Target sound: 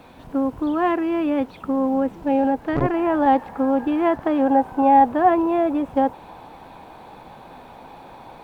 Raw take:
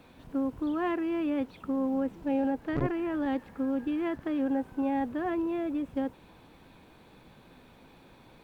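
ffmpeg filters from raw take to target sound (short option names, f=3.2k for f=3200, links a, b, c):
-af "asetnsamples=n=441:p=0,asendcmd='2.94 equalizer g 14.5',equalizer=f=810:t=o:w=1.1:g=6.5,volume=7dB"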